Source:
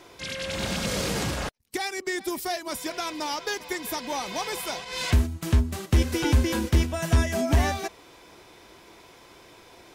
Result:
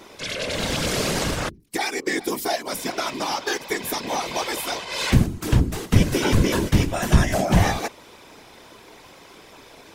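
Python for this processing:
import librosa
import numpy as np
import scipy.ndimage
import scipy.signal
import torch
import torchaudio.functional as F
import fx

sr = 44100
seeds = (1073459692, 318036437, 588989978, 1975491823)

y = fx.hum_notches(x, sr, base_hz=50, count=6)
y = fx.whisperise(y, sr, seeds[0])
y = F.gain(torch.from_numpy(y), 4.5).numpy()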